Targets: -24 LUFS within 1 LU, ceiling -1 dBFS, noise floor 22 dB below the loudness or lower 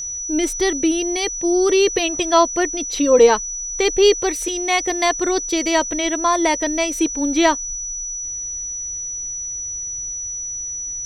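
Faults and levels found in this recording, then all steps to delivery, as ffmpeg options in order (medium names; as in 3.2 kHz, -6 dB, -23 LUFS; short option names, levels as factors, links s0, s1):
steady tone 5.9 kHz; tone level -25 dBFS; loudness -19.0 LUFS; peak level -1.5 dBFS; loudness target -24.0 LUFS
-> -af "bandreject=f=5900:w=30"
-af "volume=0.562"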